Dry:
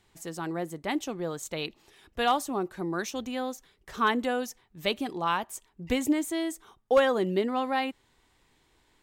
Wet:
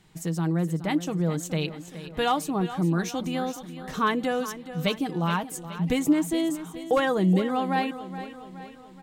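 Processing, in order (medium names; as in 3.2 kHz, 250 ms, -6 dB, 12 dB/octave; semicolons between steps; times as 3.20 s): peaking EQ 170 Hz +12.5 dB 0.83 oct; comb 6.4 ms, depth 41%; in parallel at +1 dB: compression, threshold -33 dBFS, peak gain reduction 17 dB; on the sum: feedback delay 422 ms, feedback 53%, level -13 dB; trim -2.5 dB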